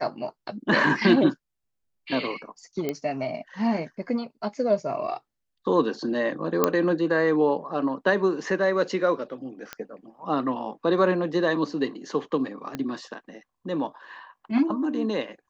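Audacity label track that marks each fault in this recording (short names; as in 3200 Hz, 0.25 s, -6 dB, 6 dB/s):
2.890000	2.890000	pop -14 dBFS
6.640000	6.640000	pop -5 dBFS
9.730000	9.730000	pop -16 dBFS
12.750000	12.750000	pop -16 dBFS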